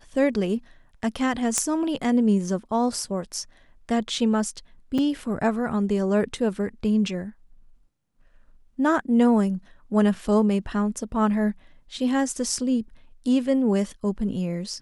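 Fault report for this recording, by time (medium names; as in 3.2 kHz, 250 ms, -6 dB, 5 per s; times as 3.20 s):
1.58 s: pop -8 dBFS
4.98 s: dropout 4.9 ms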